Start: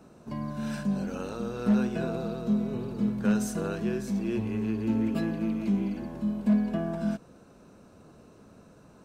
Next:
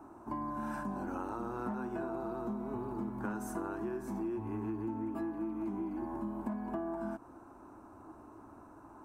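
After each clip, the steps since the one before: EQ curve 110 Hz 0 dB, 170 Hz -14 dB, 320 Hz +10 dB, 480 Hz -8 dB, 890 Hz +13 dB, 2800 Hz -11 dB, 4100 Hz -15 dB, 11000 Hz -1 dB; compressor 10:1, threshold -32 dBFS, peak gain reduction 12 dB; gain -2 dB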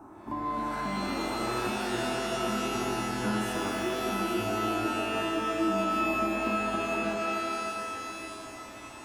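flange 0.29 Hz, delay 9 ms, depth 9.1 ms, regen +70%; shimmer reverb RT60 3 s, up +12 st, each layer -2 dB, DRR 1.5 dB; gain +7.5 dB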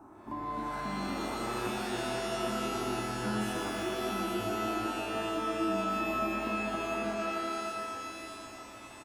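echo 0.123 s -7.5 dB; gain -4 dB

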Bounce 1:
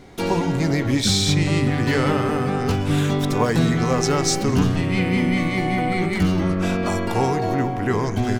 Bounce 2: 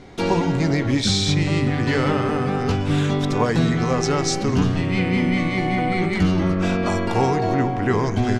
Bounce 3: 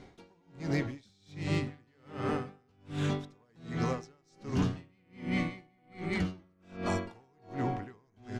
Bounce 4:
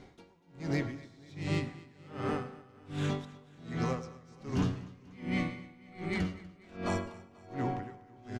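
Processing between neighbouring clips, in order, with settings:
LPF 6800 Hz 12 dB/oct; vocal rider 2 s
one-sided clip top -13 dBFS, bottom -12 dBFS; dB-linear tremolo 1.3 Hz, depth 39 dB; gain -8.5 dB
feedback echo 0.243 s, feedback 56%, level -20 dB; reverb RT60 0.55 s, pre-delay 88 ms, DRR 15.5 dB; gain -1 dB

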